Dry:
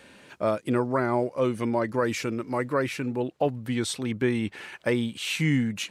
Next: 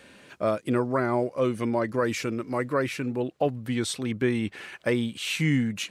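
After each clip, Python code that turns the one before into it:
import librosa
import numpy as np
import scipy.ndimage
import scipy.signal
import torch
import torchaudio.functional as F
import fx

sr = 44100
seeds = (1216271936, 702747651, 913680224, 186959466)

y = fx.notch(x, sr, hz=890.0, q=12.0)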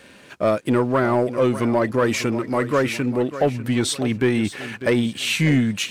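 y = fx.echo_feedback(x, sr, ms=597, feedback_pct=31, wet_db=-14)
y = fx.leveller(y, sr, passes=1)
y = y * librosa.db_to_amplitude(3.5)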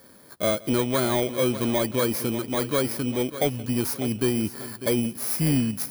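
y = fx.bit_reversed(x, sr, seeds[0], block=16)
y = fx.echo_feedback(y, sr, ms=172, feedback_pct=51, wet_db=-23)
y = y * librosa.db_to_amplitude(-4.5)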